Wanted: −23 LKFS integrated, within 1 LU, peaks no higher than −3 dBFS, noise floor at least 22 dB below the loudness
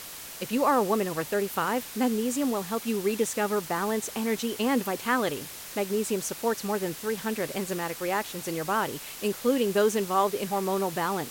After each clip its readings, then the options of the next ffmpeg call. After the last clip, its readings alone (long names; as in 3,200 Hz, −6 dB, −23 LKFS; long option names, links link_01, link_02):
background noise floor −41 dBFS; target noise floor −50 dBFS; integrated loudness −28.0 LKFS; sample peak −11.0 dBFS; target loudness −23.0 LKFS
→ -af "afftdn=noise_reduction=9:noise_floor=-41"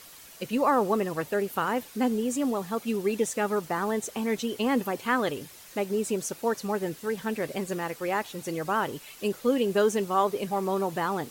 background noise floor −49 dBFS; target noise floor −51 dBFS
→ -af "afftdn=noise_reduction=6:noise_floor=-49"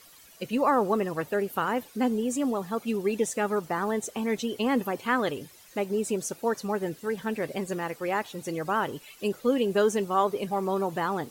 background noise floor −53 dBFS; integrated loudness −28.5 LKFS; sample peak −11.5 dBFS; target loudness −23.0 LKFS
→ -af "volume=5.5dB"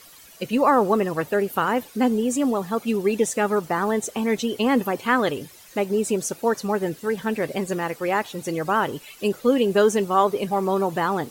integrated loudness −23.0 LKFS; sample peak −6.0 dBFS; background noise floor −48 dBFS